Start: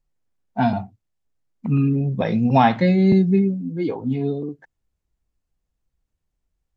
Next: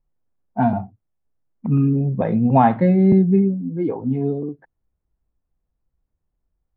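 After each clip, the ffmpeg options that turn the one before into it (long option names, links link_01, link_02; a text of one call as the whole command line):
ffmpeg -i in.wav -af "lowpass=1300,volume=1.5dB" out.wav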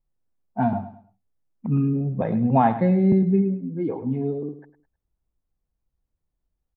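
ffmpeg -i in.wav -af "aecho=1:1:104|208|312:0.224|0.0716|0.0229,volume=-4dB" out.wav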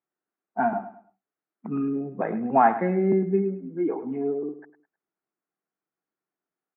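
ffmpeg -i in.wav -af "highpass=frequency=250:width=0.5412,highpass=frequency=250:width=1.3066,equalizer=frequency=250:width_type=q:width=4:gain=-8,equalizer=frequency=530:width_type=q:width=4:gain=-9,equalizer=frequency=930:width_type=q:width=4:gain=-4,equalizer=frequency=1400:width_type=q:width=4:gain=4,lowpass=frequency=2200:width=0.5412,lowpass=frequency=2200:width=1.3066,volume=4dB" out.wav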